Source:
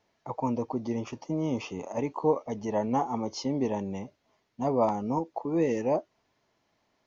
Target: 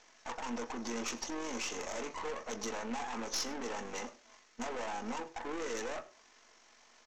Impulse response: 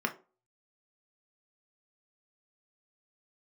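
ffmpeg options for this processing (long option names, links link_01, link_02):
-filter_complex "[0:a]highpass=frequency=1000:poles=1,acompressor=threshold=-38dB:ratio=6,aeval=exprs='(tanh(224*val(0)+0.25)-tanh(0.25))/224':channel_layout=same,aexciter=amount=2.6:drive=6:freq=5400,aresample=16000,aeval=exprs='max(val(0),0)':channel_layout=same,aresample=44100,tremolo=f=47:d=0.4,aeval=exprs='0.0126*sin(PI/2*1.41*val(0)/0.0126)':channel_layout=same,aecho=1:1:100:0.1,asplit=2[link_01][link_02];[1:a]atrim=start_sample=2205[link_03];[link_02][link_03]afir=irnorm=-1:irlink=0,volume=-7.5dB[link_04];[link_01][link_04]amix=inputs=2:normalize=0,volume=9dB"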